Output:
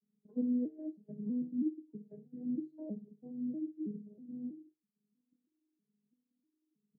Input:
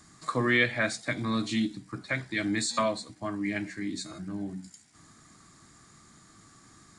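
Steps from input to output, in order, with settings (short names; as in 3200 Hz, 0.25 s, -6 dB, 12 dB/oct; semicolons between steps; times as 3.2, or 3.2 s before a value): arpeggiated vocoder minor triad, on G#3, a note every 0.321 s; gate -54 dBFS, range -16 dB; inverse Chebyshev low-pass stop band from 1100 Hz, stop band 50 dB; resonator 150 Hz, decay 0.39 s, harmonics odd, mix 80%; gain +6.5 dB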